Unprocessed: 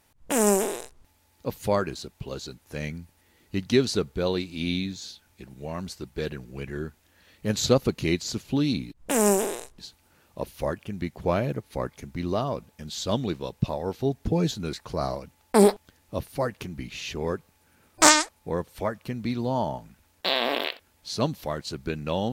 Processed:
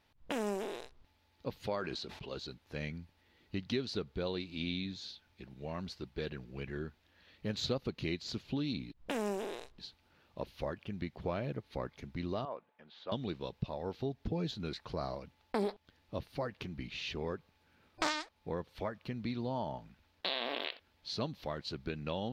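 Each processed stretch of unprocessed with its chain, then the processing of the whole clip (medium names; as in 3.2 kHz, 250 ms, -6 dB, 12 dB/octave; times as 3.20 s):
1.66–2.37 s: low-pass 10 kHz + bass shelf 170 Hz -9.5 dB + decay stretcher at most 53 dB/s
12.45–13.12 s: band-pass 750–2200 Hz + tilt EQ -3 dB/octave
whole clip: resonant high shelf 5.8 kHz -12.5 dB, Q 1.5; compression 2.5:1, threshold -28 dBFS; trim -6.5 dB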